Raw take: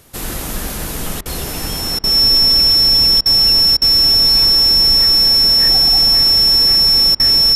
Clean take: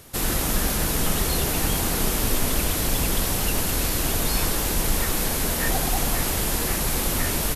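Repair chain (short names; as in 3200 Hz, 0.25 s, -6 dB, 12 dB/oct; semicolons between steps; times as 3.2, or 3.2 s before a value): notch 5400 Hz, Q 30; interpolate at 1.21/1.99/3.21/3.77/7.15, 46 ms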